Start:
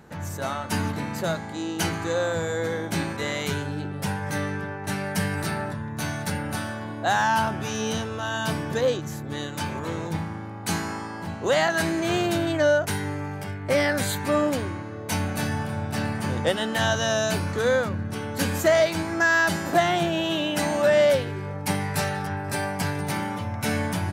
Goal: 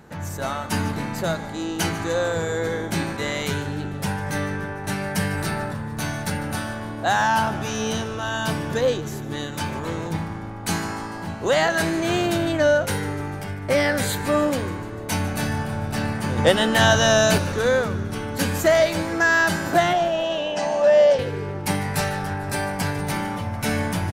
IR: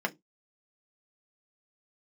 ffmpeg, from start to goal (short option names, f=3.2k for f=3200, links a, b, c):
-filter_complex "[0:a]asettb=1/sr,asplit=3[a][b][c];[a]atrim=end=16.384[d];[b]atrim=start=16.38:end=17.38,asetpts=PTS-STARTPTS,afade=t=in:d=0.004:c=qsin,afade=t=out:st=0.996:d=0.004:c=qsin,acontrast=26[e];[c]atrim=start=17.376[f];[d][e]acrossfade=d=0.004:c1=hsin:c2=qsin[g];[g][f]acrossfade=d=0.004:c1=qsin:c2=hsin,asettb=1/sr,asplit=3[h][i][j];[h]atrim=end=19.934[k];[i]atrim=start=19.93:end=21.19,asetpts=PTS-STARTPTS,afade=t=in:d=0.004:c=qsin,afade=t=out:st=1.256:d=0.004:c=qsin,highpass=260,equalizer=f=310:t=q:w=4:g=-9,equalizer=f=440:t=q:w=4:g=-4,equalizer=f=660:t=q:w=4:g=6,equalizer=f=1.4k:t=q:w=4:g=-9,equalizer=f=2.2k:t=q:w=4:g=-8,equalizer=f=3.8k:t=q:w=4:g=-9,lowpass=f=6.2k:w=0.5412,lowpass=f=6.2k:w=1.3066[l];[j]atrim=start=21.186[m];[k][l]acrossfade=d=0.004:c1=hsin:c2=qsin[n];[n][m]acrossfade=d=0.004:c1=qsin:c2=hsin,asplit=7[o][p][q][r][s][t][u];[p]adelay=149,afreqshift=-60,volume=-17dB[v];[q]adelay=298,afreqshift=-120,volume=-20.9dB[w];[r]adelay=447,afreqshift=-180,volume=-24.8dB[x];[s]adelay=596,afreqshift=-240,volume=-28.6dB[y];[t]adelay=745,afreqshift=-300,volume=-32.5dB[z];[u]adelay=894,afreqshift=-360,volume=-36.4dB[aa];[o][v][w][x][y][z][aa]amix=inputs=7:normalize=0,volume=2dB"